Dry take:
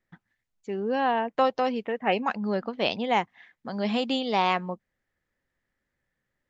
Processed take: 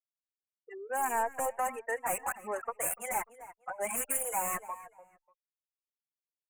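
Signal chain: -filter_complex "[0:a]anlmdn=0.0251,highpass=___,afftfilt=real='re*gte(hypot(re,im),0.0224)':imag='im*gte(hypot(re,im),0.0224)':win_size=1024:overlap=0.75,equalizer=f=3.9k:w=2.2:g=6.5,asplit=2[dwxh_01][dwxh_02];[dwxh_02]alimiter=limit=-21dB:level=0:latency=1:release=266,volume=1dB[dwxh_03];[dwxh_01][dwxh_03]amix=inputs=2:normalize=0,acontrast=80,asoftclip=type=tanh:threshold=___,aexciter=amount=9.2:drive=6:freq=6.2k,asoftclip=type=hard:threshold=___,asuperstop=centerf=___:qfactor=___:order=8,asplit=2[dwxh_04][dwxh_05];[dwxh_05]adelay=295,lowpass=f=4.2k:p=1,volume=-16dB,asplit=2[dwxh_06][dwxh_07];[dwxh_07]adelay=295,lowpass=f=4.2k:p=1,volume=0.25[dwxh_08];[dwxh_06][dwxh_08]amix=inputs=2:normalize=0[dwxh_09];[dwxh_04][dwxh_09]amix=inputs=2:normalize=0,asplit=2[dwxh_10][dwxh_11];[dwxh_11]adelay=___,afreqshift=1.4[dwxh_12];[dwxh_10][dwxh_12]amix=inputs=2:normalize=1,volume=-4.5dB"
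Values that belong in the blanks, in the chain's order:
950, -20.5dB, -18dB, 4200, 0.83, 3.7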